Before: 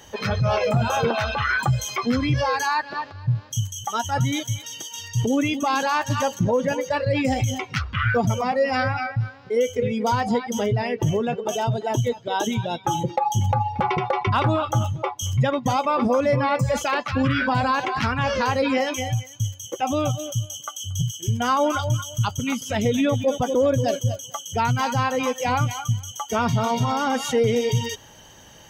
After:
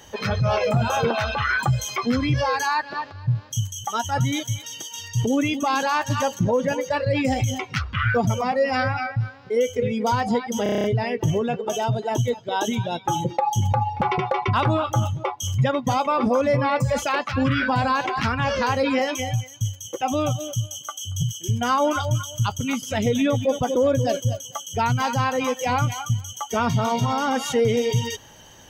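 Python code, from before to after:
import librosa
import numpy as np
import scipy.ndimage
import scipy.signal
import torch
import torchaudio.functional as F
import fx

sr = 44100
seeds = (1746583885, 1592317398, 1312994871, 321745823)

y = fx.edit(x, sr, fx.stutter(start_s=10.63, slice_s=0.03, count=8), tone=tone)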